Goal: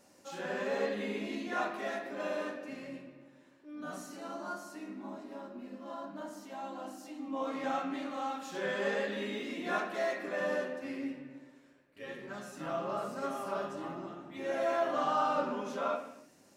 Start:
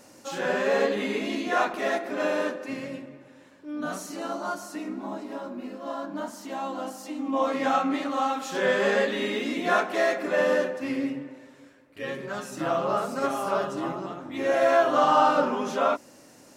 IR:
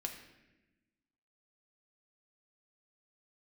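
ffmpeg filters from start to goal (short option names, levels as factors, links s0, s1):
-filter_complex "[1:a]atrim=start_sample=2205,afade=t=out:st=0.39:d=0.01,atrim=end_sample=17640[s0];[0:a][s0]afir=irnorm=-1:irlink=0,volume=0.355"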